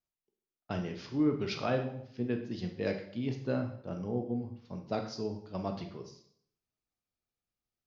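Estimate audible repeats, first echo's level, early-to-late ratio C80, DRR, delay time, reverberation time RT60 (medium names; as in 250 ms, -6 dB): no echo, no echo, 12.0 dB, 4.0 dB, no echo, 0.65 s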